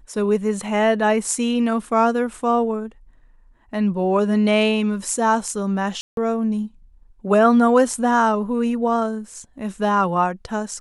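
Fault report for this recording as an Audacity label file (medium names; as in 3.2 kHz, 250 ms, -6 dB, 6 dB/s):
6.010000	6.170000	dropout 162 ms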